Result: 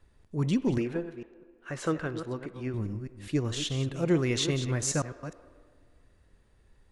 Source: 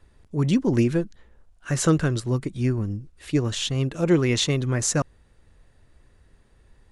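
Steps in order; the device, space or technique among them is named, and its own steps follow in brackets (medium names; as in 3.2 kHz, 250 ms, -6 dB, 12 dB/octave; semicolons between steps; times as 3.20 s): chunks repeated in reverse 205 ms, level -10.5 dB; filtered reverb send (on a send: high-pass 290 Hz 24 dB/octave + low-pass 3.8 kHz 12 dB/octave + reverberation RT60 1.9 s, pre-delay 41 ms, DRR 15 dB); 0.78–2.74 s: on the sum: tone controls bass -10 dB, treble -13 dB; trim -6 dB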